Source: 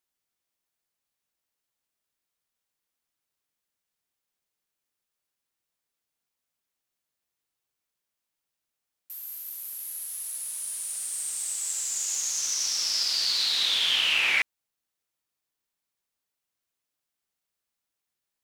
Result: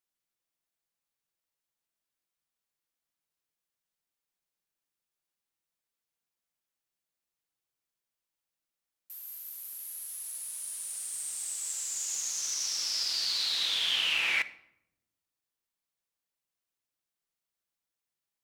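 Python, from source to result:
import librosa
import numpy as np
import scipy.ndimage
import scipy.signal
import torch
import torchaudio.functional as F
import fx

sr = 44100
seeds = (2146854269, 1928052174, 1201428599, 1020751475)

y = fx.room_shoebox(x, sr, seeds[0], volume_m3=2500.0, walls='furnished', distance_m=0.72)
y = y * 10.0 ** (-5.0 / 20.0)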